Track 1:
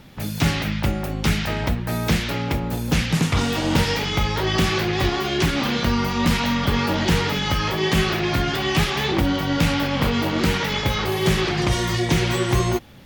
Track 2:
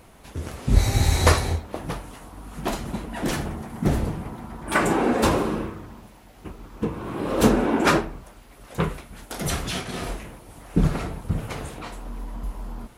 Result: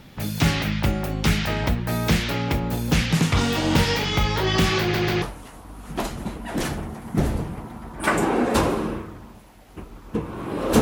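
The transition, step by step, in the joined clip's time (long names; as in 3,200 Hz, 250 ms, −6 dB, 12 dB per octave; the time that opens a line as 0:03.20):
track 1
0:04.80: stutter in place 0.14 s, 3 plays
0:05.22: continue with track 2 from 0:01.90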